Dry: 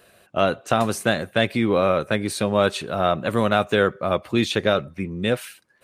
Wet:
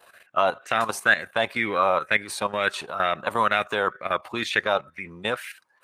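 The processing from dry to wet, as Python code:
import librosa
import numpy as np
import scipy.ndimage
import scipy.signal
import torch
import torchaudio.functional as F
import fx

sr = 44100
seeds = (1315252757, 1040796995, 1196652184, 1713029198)

y = fx.level_steps(x, sr, step_db=11)
y = fx.low_shelf(y, sr, hz=430.0, db=-12.0)
y = fx.bell_lfo(y, sr, hz=2.1, low_hz=830.0, high_hz=2100.0, db=15)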